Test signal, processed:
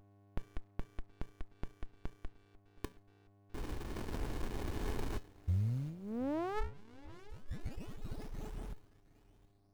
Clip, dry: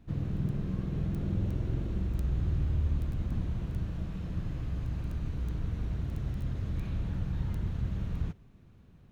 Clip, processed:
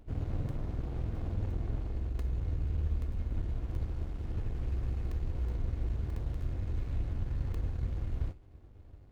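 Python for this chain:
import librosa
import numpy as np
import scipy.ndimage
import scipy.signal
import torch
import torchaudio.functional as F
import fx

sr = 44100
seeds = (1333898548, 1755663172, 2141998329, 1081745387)

p1 = fx.dmg_buzz(x, sr, base_hz=100.0, harmonics=6, level_db=-62.0, tilt_db=-2, odd_only=False)
p2 = fx.comb_fb(p1, sr, f0_hz=430.0, decay_s=0.33, harmonics='all', damping=0.0, mix_pct=80)
p3 = p2 + fx.echo_feedback(p2, sr, ms=721, feedback_pct=37, wet_db=-23, dry=0)
p4 = fx.dynamic_eq(p3, sr, hz=880.0, q=1.5, threshold_db=-55.0, ratio=4.0, max_db=-5)
p5 = p4 + 0.82 * np.pad(p4, (int(2.8 * sr / 1000.0), 0))[:len(p4)]
p6 = fx.rider(p5, sr, range_db=5, speed_s=2.0)
p7 = fx.running_max(p6, sr, window=65)
y = p7 * 10.0 ** (9.0 / 20.0)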